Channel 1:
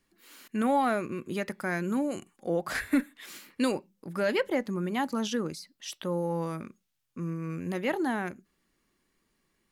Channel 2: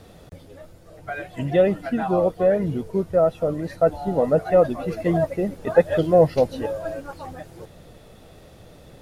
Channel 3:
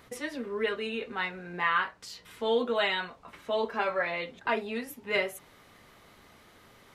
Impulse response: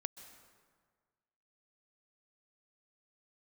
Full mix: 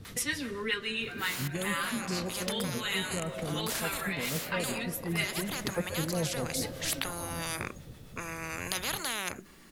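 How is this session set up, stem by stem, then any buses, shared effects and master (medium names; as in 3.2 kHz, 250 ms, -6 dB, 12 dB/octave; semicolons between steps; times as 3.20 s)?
+1.5 dB, 1.00 s, no bus, send -20.5 dB, spectrum-flattening compressor 10:1
-8.0 dB, 0.00 s, bus A, send -6 dB, peaking EQ 130 Hz +5.5 dB 2.1 oct
+3.0 dB, 0.05 s, bus A, send -11 dB, treble shelf 2.4 kHz +11 dB
bus A: 0.0 dB, harmonic tremolo 7.6 Hz, depth 70%, crossover 620 Hz; compression 2:1, threshold -40 dBFS, peak gain reduction 12.5 dB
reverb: on, RT60 1.6 s, pre-delay 118 ms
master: gain riding within 4 dB 0.5 s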